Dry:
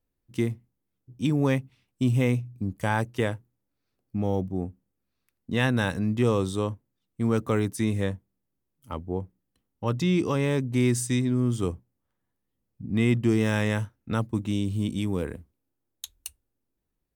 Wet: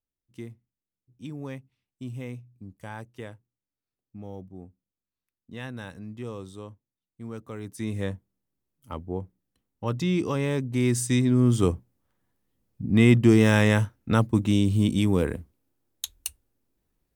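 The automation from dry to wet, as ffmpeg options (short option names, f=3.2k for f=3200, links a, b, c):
-af "volume=5.5dB,afade=t=in:st=7.58:d=0.55:silence=0.251189,afade=t=in:st=10.79:d=0.8:silence=0.446684"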